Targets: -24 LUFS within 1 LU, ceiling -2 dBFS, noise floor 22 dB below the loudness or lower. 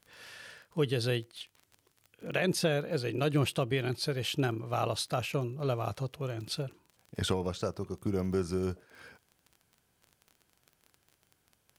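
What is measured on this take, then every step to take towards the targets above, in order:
ticks 24/s; loudness -32.5 LUFS; peak -17.0 dBFS; loudness target -24.0 LUFS
-> de-click; gain +8.5 dB

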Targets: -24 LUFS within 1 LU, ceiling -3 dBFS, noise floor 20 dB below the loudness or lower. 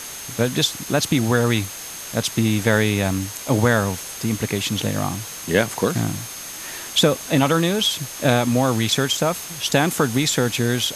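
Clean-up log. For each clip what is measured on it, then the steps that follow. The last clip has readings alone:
steady tone 6400 Hz; tone level -37 dBFS; noise floor -34 dBFS; noise floor target -41 dBFS; loudness -20.5 LUFS; peak -4.0 dBFS; loudness target -24.0 LUFS
-> notch 6400 Hz, Q 30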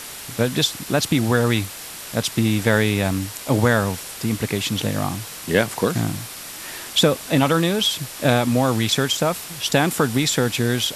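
steady tone none; noise floor -36 dBFS; noise floor target -41 dBFS
-> noise print and reduce 6 dB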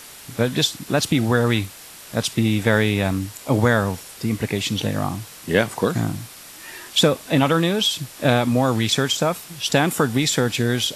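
noise floor -41 dBFS; loudness -20.5 LUFS; peak -4.5 dBFS; loudness target -24.0 LUFS
-> gain -3.5 dB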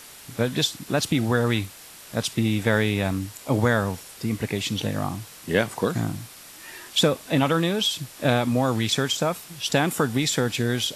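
loudness -24.0 LUFS; peak -8.0 dBFS; noise floor -45 dBFS

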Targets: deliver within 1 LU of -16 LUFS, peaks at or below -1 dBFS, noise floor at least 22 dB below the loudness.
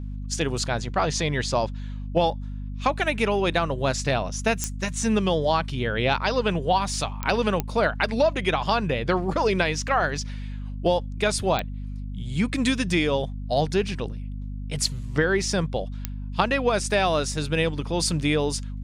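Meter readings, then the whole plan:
clicks 5; hum 50 Hz; harmonics up to 250 Hz; hum level -30 dBFS; loudness -24.5 LUFS; peak -5.0 dBFS; loudness target -16.0 LUFS
-> de-click; de-hum 50 Hz, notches 5; gain +8.5 dB; limiter -1 dBFS

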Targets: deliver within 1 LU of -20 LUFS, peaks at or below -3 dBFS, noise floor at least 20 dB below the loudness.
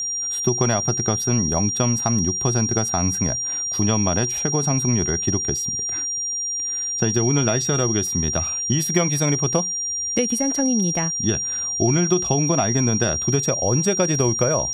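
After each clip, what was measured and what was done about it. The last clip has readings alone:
ticks 26/s; steady tone 5700 Hz; tone level -23 dBFS; loudness -20.0 LUFS; peak -5.0 dBFS; loudness target -20.0 LUFS
-> de-click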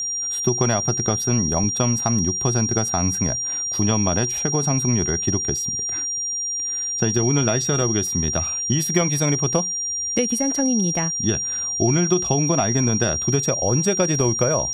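ticks 0.068/s; steady tone 5700 Hz; tone level -23 dBFS
-> notch 5700 Hz, Q 30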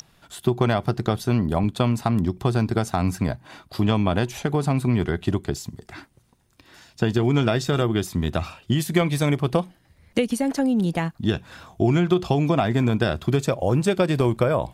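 steady tone none; loudness -23.0 LUFS; peak -5.0 dBFS; loudness target -20.0 LUFS
-> gain +3 dB; limiter -3 dBFS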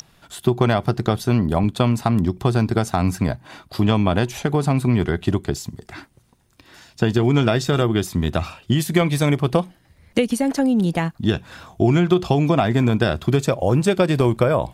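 loudness -20.0 LUFS; peak -3.0 dBFS; noise floor -57 dBFS

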